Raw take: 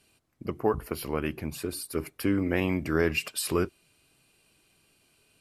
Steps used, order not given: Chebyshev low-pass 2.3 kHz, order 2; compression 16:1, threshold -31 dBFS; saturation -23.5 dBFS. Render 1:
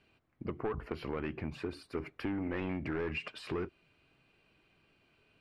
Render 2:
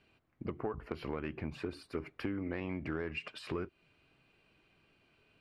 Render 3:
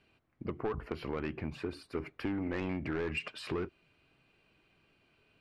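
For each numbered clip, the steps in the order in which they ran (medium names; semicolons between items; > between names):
saturation > compression > Chebyshev low-pass; compression > Chebyshev low-pass > saturation; Chebyshev low-pass > saturation > compression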